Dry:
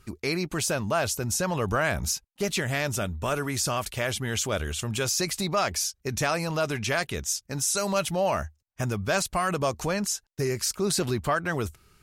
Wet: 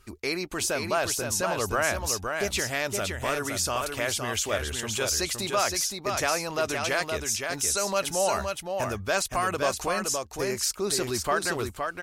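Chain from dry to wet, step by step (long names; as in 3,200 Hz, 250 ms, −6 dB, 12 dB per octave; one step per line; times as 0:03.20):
parametric band 150 Hz −11.5 dB 1.1 octaves
single-tap delay 517 ms −5 dB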